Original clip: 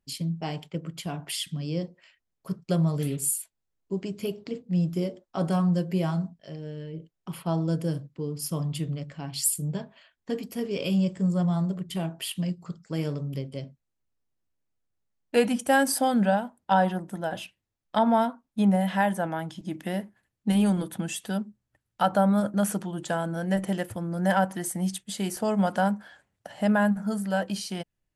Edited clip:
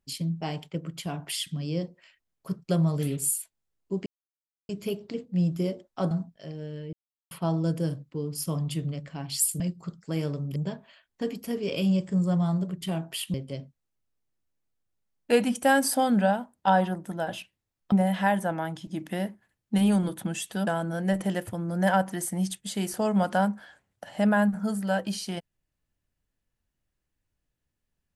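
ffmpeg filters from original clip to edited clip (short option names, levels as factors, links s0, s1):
-filter_complex "[0:a]asplit=10[s0][s1][s2][s3][s4][s5][s6][s7][s8][s9];[s0]atrim=end=4.06,asetpts=PTS-STARTPTS,afade=t=out:st=4.056:d=0.004:c=hsin,apad=pad_dur=0.63[s10];[s1]atrim=start=4.06:end=5.482,asetpts=PTS-STARTPTS,afade=t=in:d=0.004:c=hsin[s11];[s2]atrim=start=6.148:end=6.97,asetpts=PTS-STARTPTS,afade=t=out:st=0.818:d=0.004:c=hsin[s12];[s3]atrim=start=6.97:end=7.35,asetpts=PTS-STARTPTS,volume=0[s13];[s4]atrim=start=7.35:end=9.642,asetpts=PTS-STARTPTS,afade=t=in:d=0.004:c=hsin[s14];[s5]atrim=start=12.418:end=13.382[s15];[s6]atrim=start=9.638:end=12.422[s16];[s7]atrim=start=13.378:end=17.962[s17];[s8]atrim=start=18.658:end=21.412[s18];[s9]atrim=start=23.098[s19];[s10][s11]concat=n=2:v=0:a=1[s20];[s12][s13][s14]concat=n=3:v=0:a=1[s21];[s20][s21]acrossfade=d=0.004:c1=hsin:c2=hsin[s22];[s22][s15]acrossfade=d=0.004:c1=hsin:c2=hsin[s23];[s23][s16]acrossfade=d=0.004:c1=hsin:c2=hsin[s24];[s24][s17]acrossfade=d=0.004:c1=hsin:c2=hsin[s25];[s25][s18]acrossfade=d=0.004:c1=hsin:c2=hsin[s26];[s26][s19]acrossfade=d=0.004:c1=hsin:c2=hsin"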